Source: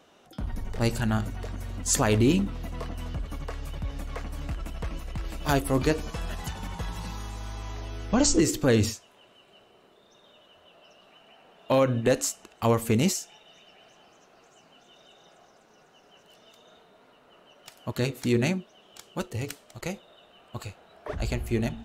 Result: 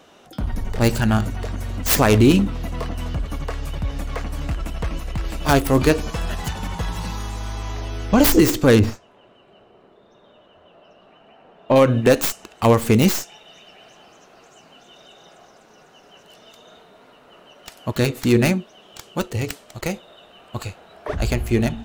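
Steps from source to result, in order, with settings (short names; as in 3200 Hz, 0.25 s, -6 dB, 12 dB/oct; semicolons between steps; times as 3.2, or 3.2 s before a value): tracing distortion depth 0.26 ms; 8.79–11.76 LPF 1100 Hz 6 dB/oct; gain +8 dB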